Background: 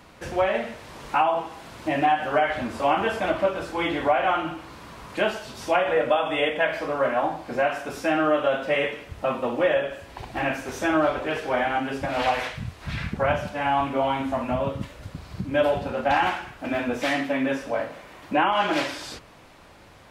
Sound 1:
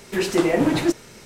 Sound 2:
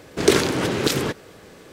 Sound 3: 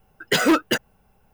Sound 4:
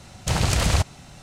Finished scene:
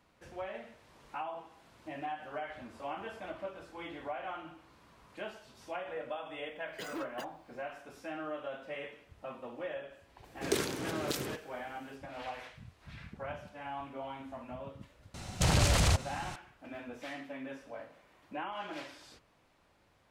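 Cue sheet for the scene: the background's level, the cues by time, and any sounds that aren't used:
background -18.5 dB
6.47 s: add 3 -16 dB + peak limiter -19.5 dBFS
10.24 s: add 2 -15.5 dB + treble shelf 9.7 kHz +8.5 dB
15.14 s: add 4 -16 dB + loudness maximiser +16.5 dB
not used: 1

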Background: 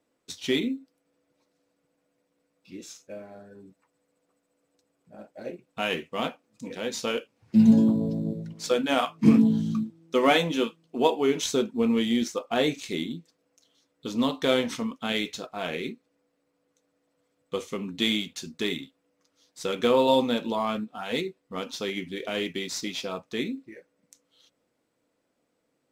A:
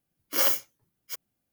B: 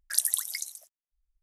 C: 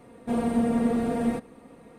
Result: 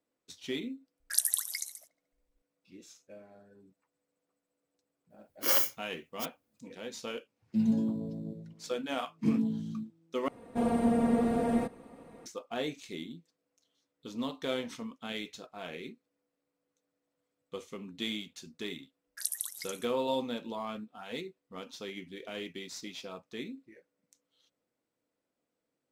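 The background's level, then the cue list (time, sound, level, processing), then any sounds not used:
background -10.5 dB
1.00 s: add B -2.5 dB + feedback echo behind a low-pass 72 ms, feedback 53%, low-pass 2 kHz, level -16 dB
5.10 s: add A -3 dB
10.28 s: replace with C -3.5 dB + peaking EQ 710 Hz +3 dB 1.2 oct
19.07 s: add B -9 dB + high-pass 70 Hz

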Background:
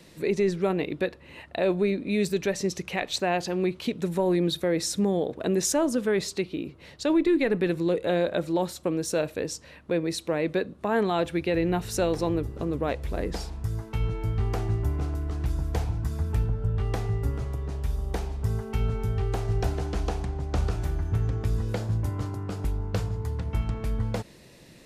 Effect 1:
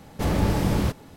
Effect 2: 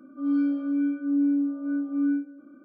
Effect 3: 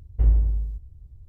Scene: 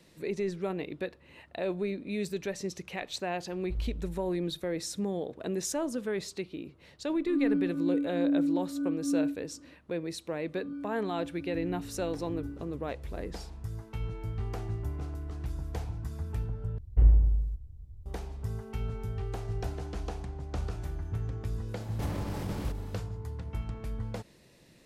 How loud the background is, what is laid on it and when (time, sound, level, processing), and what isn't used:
background -8 dB
3.51 s: add 3 -16 dB
7.11 s: add 2 -8 dB + peaking EQ 300 Hz +4 dB
10.36 s: add 2 -16 dB
16.78 s: replace with 3 -1.5 dB
21.80 s: add 1 -2.5 dB + compression, threshold -30 dBFS

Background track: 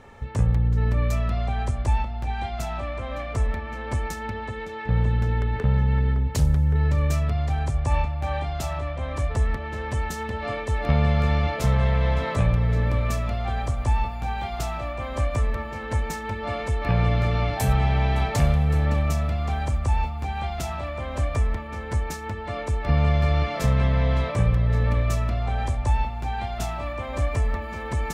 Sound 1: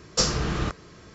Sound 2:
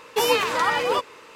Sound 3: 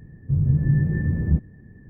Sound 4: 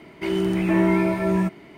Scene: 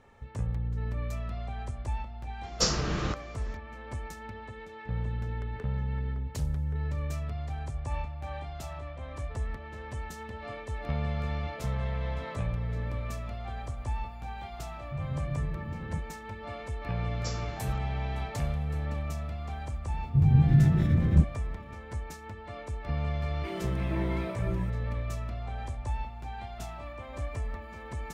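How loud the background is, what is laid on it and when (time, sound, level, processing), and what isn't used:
background track -11 dB
2.43 s: add 1 -3.5 dB + resampled via 16 kHz
14.62 s: add 3 -15 dB
17.07 s: add 1 -18 dB
19.85 s: add 3 -1 dB + median filter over 25 samples
23.22 s: add 4 -13.5 dB + reverb removal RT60 0.58 s
not used: 2

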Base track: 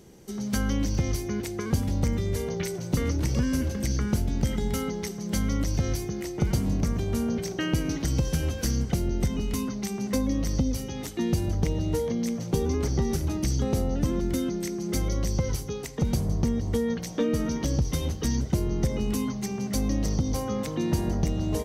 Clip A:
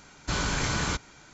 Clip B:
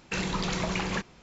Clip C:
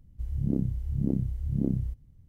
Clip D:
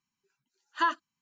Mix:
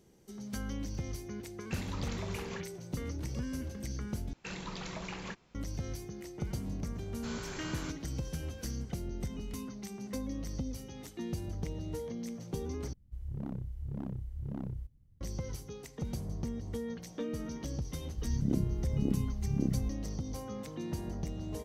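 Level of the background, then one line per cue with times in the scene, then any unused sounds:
base track -12 dB
1.59 s: add B -12.5 dB
4.33 s: replace with B -11.5 dB
6.95 s: add A -15 dB
12.93 s: replace with C -8.5 dB + hard clipper -24 dBFS
17.98 s: add C -3.5 dB
not used: D

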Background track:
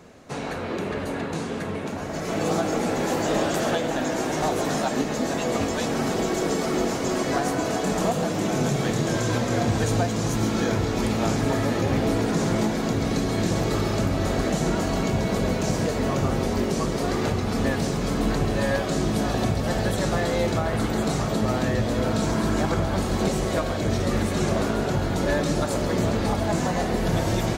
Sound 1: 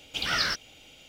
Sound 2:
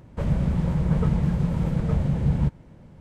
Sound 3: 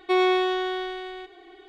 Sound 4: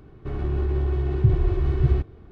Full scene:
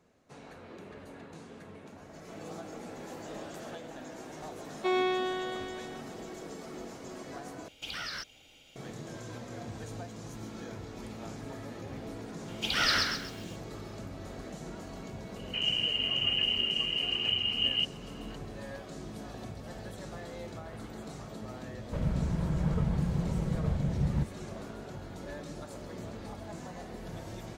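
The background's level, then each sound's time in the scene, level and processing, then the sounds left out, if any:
background track -19 dB
4.75 s: add 3 -7.5 dB
7.68 s: replace with 1 -5.5 dB + compression, threshold -29 dBFS
12.48 s: add 1 -1 dB + bit-crushed delay 132 ms, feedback 35%, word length 9-bit, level -4 dB
15.36 s: add 2 -9 dB + frequency inversion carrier 3 kHz
21.75 s: add 2 -7.5 dB
not used: 4

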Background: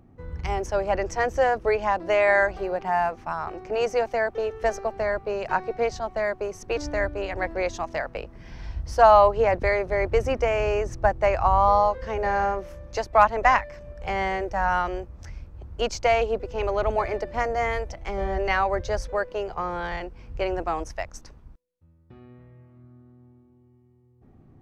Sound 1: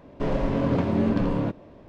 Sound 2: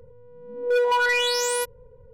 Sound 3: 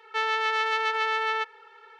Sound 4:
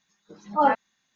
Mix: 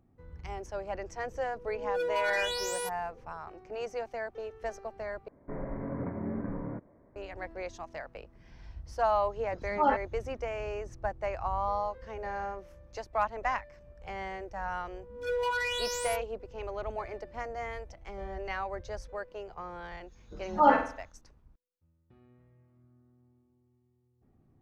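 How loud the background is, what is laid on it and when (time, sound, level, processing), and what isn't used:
background -12.5 dB
1.24 s: add 2 -4.5 dB + compression, threshold -26 dBFS
5.28 s: replace with 1 -12.5 dB + steep low-pass 2.2 kHz 96 dB/octave
9.22 s: add 4 -6 dB
14.51 s: add 2 -10.5 dB + phase dispersion lows, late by 124 ms, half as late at 600 Hz
20.02 s: add 4 -2 dB, fades 0.10 s + flutter echo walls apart 8.2 m, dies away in 0.5 s
not used: 3

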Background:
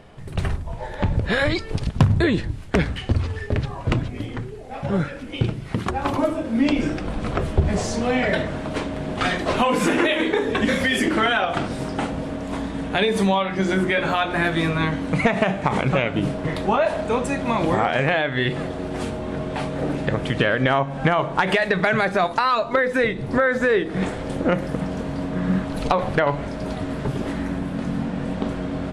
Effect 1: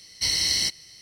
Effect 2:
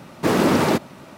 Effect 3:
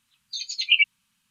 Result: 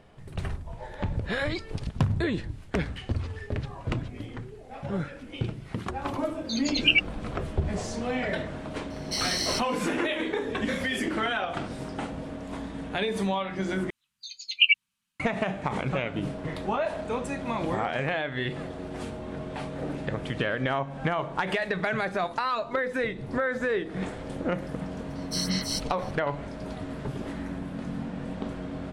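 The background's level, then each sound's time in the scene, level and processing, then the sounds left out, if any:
background -8.5 dB
6.16 s: add 3 -2.5 dB
8.90 s: add 1 -6.5 dB
13.90 s: replace with 3 -0.5 dB + upward expansion, over -34 dBFS
25.10 s: add 1 -4 dB + lamp-driven phase shifter 2.9 Hz
not used: 2

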